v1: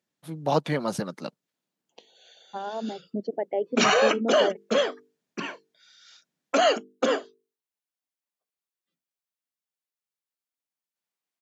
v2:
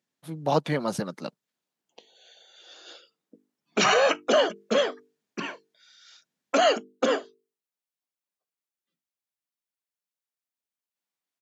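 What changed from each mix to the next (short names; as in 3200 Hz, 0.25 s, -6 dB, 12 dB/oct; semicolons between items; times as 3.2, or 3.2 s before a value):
second voice: muted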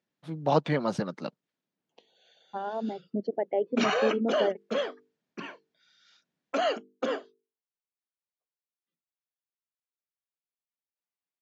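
second voice: unmuted; background -6.0 dB; master: add air absorption 110 m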